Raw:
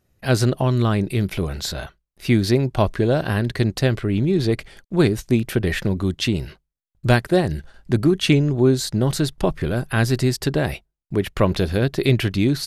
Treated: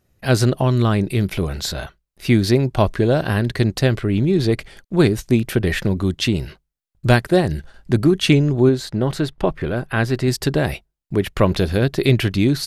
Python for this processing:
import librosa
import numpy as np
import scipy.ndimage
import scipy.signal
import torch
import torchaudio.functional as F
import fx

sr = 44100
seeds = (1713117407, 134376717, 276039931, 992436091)

y = fx.bass_treble(x, sr, bass_db=-4, treble_db=-11, at=(8.69, 10.28))
y = F.gain(torch.from_numpy(y), 2.0).numpy()